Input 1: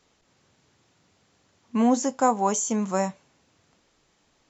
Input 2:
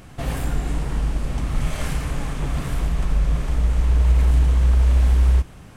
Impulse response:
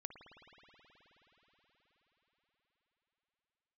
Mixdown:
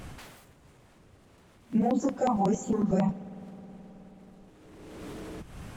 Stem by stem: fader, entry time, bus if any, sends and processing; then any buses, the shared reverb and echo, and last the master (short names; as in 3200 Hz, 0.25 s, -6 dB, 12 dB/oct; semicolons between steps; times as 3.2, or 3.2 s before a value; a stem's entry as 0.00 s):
-3.0 dB, 0.00 s, send -9 dB, phase scrambler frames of 50 ms; tilt -3.5 dB/oct; step phaser 11 Hz 280–6000 Hz
+0.5 dB, 0.00 s, no send, compressor 20:1, threshold -24 dBFS, peak gain reduction 13.5 dB; wavefolder -36 dBFS; auto duck -19 dB, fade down 0.40 s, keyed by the first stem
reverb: on, RT60 5.5 s, pre-delay 53 ms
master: limiter -17.5 dBFS, peak gain reduction 11 dB